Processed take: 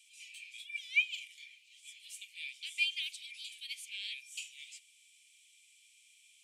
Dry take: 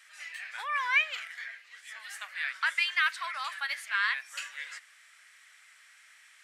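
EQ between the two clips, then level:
Chebyshev high-pass with heavy ripple 2,300 Hz, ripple 6 dB
0.0 dB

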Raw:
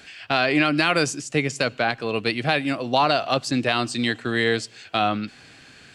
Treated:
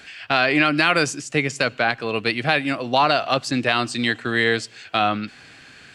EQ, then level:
parametric band 1,700 Hz +4 dB 1.8 octaves
0.0 dB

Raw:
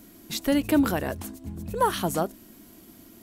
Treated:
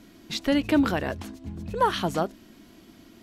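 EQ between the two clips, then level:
high-frequency loss of the air 190 metres
high-shelf EQ 2,100 Hz +9 dB
parametric band 11,000 Hz +10 dB 0.6 octaves
0.0 dB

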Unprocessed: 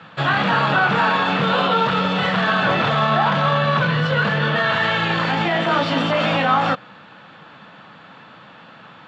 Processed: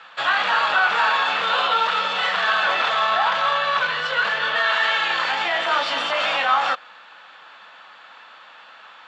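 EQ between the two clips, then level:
high-pass filter 790 Hz 12 dB per octave
high-shelf EQ 5,900 Hz +6 dB
0.0 dB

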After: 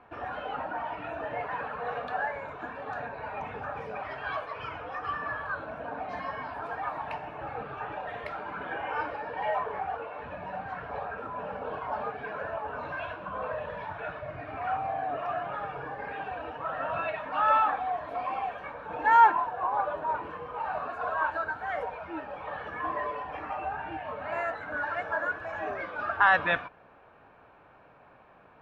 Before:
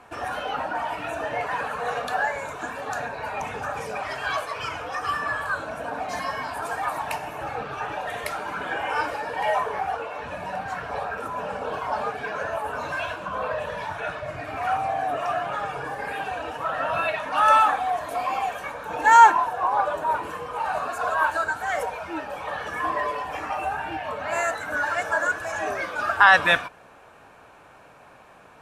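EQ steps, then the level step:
high-frequency loss of the air 360 metres
−4.5 dB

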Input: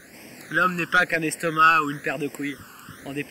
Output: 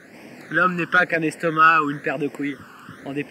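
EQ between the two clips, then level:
high-pass filter 120 Hz 12 dB per octave
low-pass filter 1,900 Hz 6 dB per octave
+4.0 dB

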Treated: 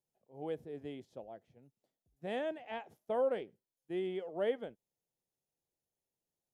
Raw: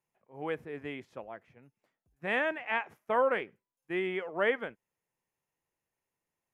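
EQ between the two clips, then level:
flat-topped bell 1,600 Hz −13.5 dB
−3.5 dB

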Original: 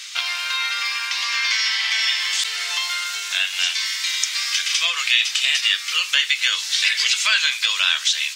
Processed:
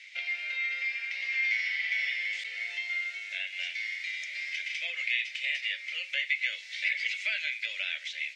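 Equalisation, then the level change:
pair of resonant band-passes 1,100 Hz, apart 1.9 octaves
−2.5 dB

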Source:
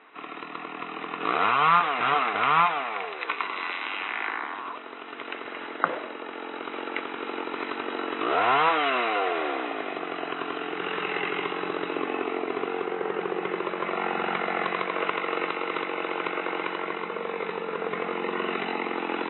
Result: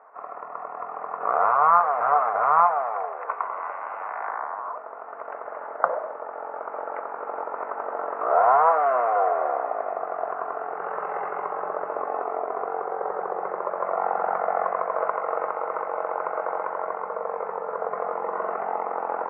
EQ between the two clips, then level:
inverse Chebyshev low-pass filter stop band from 3,400 Hz, stop band 50 dB
low shelf with overshoot 430 Hz −11 dB, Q 3
+2.0 dB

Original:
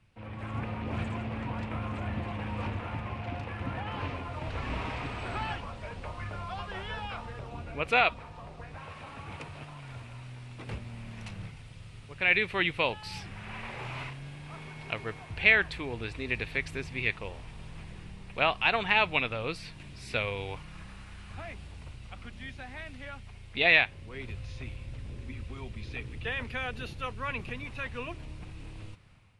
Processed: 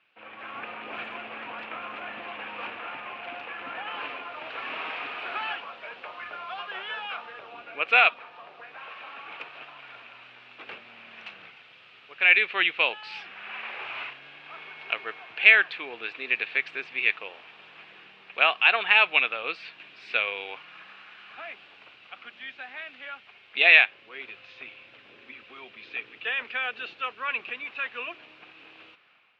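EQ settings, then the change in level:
loudspeaker in its box 370–2,700 Hz, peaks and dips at 560 Hz −3 dB, 950 Hz −6 dB, 2,000 Hz −7 dB
spectral tilt +4.5 dB per octave
+5.5 dB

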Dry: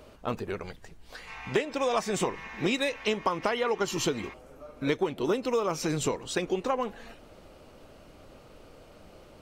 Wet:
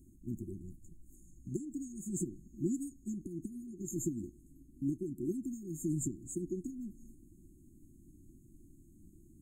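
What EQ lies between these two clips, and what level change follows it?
linear-phase brick-wall band-stop 370–6,400 Hz
−3.5 dB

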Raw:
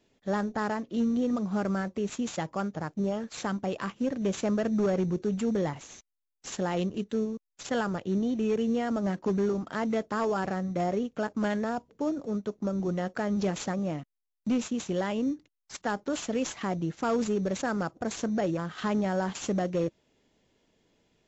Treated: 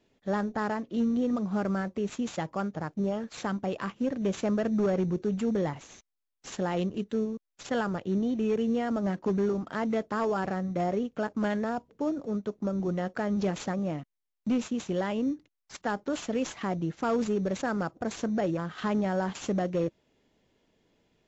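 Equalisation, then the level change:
high-shelf EQ 6,600 Hz −8.5 dB
0.0 dB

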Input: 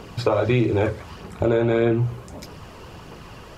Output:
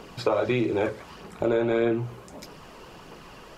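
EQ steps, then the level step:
parametric band 85 Hz −14.5 dB 1.1 octaves
−3.0 dB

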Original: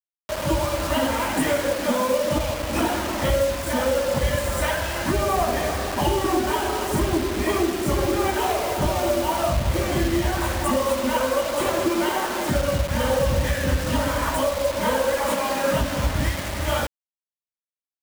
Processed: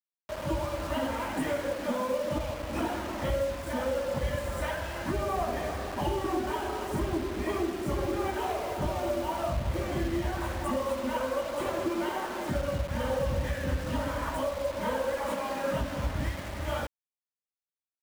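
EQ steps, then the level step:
high-shelf EQ 3,200 Hz −7.5 dB
−8.0 dB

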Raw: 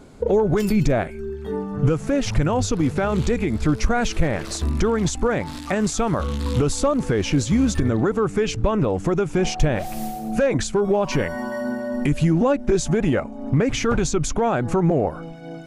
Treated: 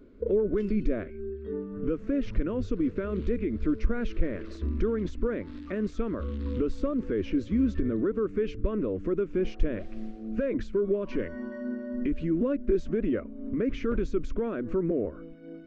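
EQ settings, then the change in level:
head-to-tape spacing loss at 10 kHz 43 dB
phaser with its sweep stopped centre 330 Hz, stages 4
−3.5 dB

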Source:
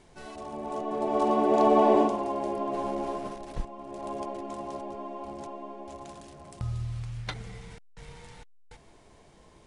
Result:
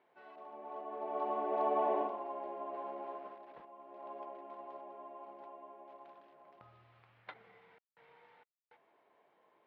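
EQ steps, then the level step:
band-pass filter 540–2,900 Hz
high-frequency loss of the air 310 metres
−7.5 dB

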